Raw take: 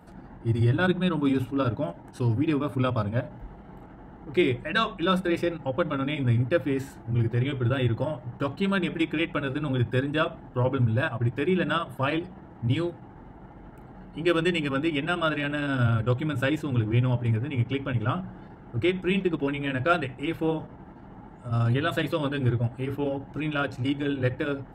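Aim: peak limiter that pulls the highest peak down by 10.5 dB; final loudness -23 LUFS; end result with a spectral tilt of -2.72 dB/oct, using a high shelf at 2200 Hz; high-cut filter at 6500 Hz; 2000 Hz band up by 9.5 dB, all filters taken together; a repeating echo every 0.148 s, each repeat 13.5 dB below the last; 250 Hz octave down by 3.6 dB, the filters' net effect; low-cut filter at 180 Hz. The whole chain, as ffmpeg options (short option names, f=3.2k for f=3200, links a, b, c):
-af "highpass=180,lowpass=6.5k,equalizer=f=250:t=o:g=-4,equalizer=f=2k:t=o:g=9,highshelf=f=2.2k:g=7.5,alimiter=limit=-14.5dB:level=0:latency=1,aecho=1:1:148|296:0.211|0.0444,volume=4dB"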